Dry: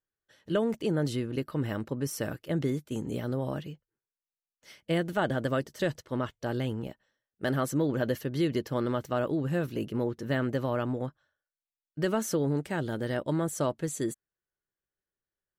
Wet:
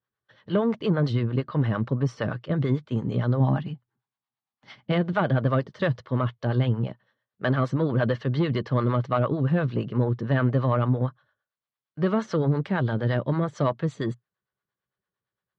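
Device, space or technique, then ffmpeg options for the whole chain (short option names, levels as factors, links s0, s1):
guitar amplifier with harmonic tremolo: -filter_complex "[0:a]acrossover=split=500[s0][s1];[s0]aeval=exprs='val(0)*(1-0.7/2+0.7/2*cos(2*PI*8.8*n/s))':c=same[s2];[s1]aeval=exprs='val(0)*(1-0.7/2-0.7/2*cos(2*PI*8.8*n/s))':c=same[s3];[s2][s3]amix=inputs=2:normalize=0,asoftclip=type=tanh:threshold=0.0794,highpass=83,equalizer=f=120:t=q:w=4:g=9,equalizer=f=190:t=q:w=4:g=4,equalizer=f=320:t=q:w=4:g=-5,equalizer=f=1100:t=q:w=4:g=7,equalizer=f=2600:t=q:w=4:g=-4,lowpass=f=4000:w=0.5412,lowpass=f=4000:w=1.3066,asettb=1/sr,asplit=3[s4][s5][s6];[s4]atrim=end=3.404[s7];[s5]atrim=start=3.4:end=4.92,asetpts=PTS-STARTPTS,afade=t=in:d=0.004:c=qsin,afade=t=out:st=1.516:d=0.004:c=qsin,equalizer=f=125:t=o:w=0.33:g=6,equalizer=f=250:t=o:w=0.33:g=9,equalizer=f=500:t=o:w=0.33:g=-9,equalizer=f=800:t=o:w=0.33:g=9[s8];[s6]atrim=start=4.916[s9];[s7][s8]acrossfade=d=0.004:c1=hsin:c2=qsin[s10];[s10][s9]acrossfade=d=0.004:c1=qsin:c2=hsin,volume=2.66"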